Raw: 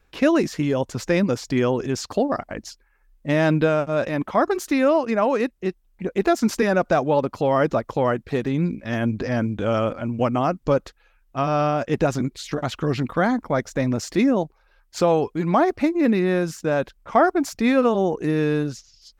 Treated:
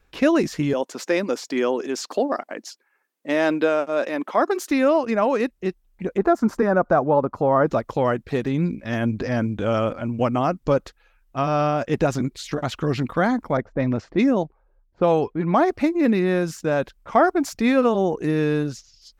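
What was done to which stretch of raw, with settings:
0.73–4.7 HPF 260 Hz 24 dB/oct
6.17–7.67 resonant high shelf 1900 Hz -12.5 dB, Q 1.5
13.57–15.72 low-pass opened by the level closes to 330 Hz, open at -13.5 dBFS

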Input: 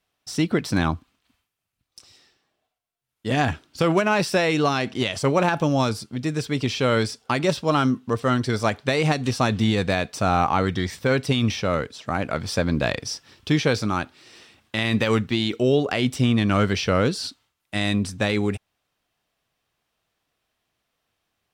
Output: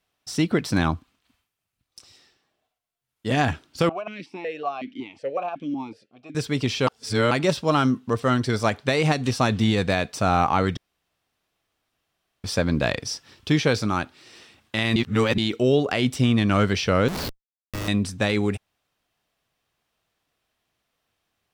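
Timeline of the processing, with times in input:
3.89–6.35 vowel sequencer 5.4 Hz
6.87–7.31 reverse
10.77–12.44 room tone
14.96–15.38 reverse
17.08–17.88 Schmitt trigger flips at -28 dBFS

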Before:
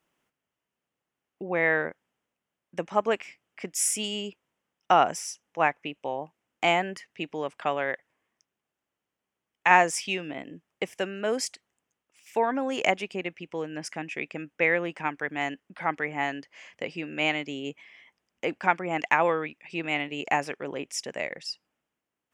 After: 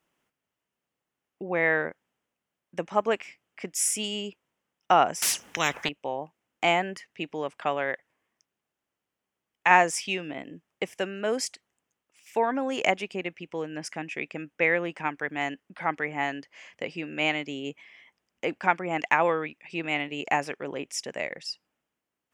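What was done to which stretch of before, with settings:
5.22–5.89 spectral compressor 4:1

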